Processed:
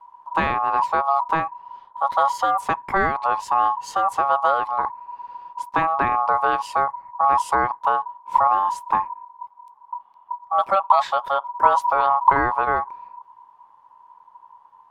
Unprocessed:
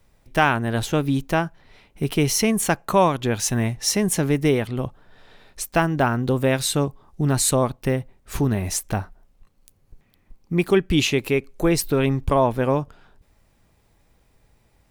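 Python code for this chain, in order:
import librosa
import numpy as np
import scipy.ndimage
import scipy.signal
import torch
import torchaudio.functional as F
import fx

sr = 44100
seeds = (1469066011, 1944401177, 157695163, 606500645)

y = fx.riaa(x, sr, side='playback')
y = y * np.sin(2.0 * np.pi * 970.0 * np.arange(len(y)) / sr)
y = y * librosa.db_to_amplitude(-4.0)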